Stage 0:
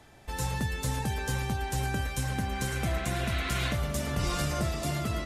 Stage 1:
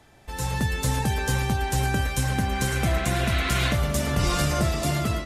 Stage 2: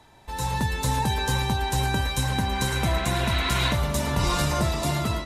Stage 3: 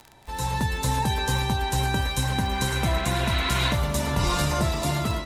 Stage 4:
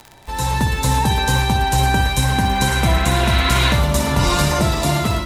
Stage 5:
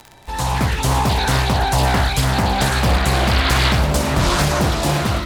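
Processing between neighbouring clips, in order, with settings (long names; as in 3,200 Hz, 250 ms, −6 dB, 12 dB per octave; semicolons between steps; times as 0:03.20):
automatic gain control gain up to 6.5 dB
hollow resonant body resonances 950/3,900 Hz, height 14 dB, ringing for 40 ms; level −1 dB
surface crackle 47 per second −31 dBFS
flutter between parallel walls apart 10.3 metres, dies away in 0.41 s; level +7 dB
highs frequency-modulated by the lows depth 0.83 ms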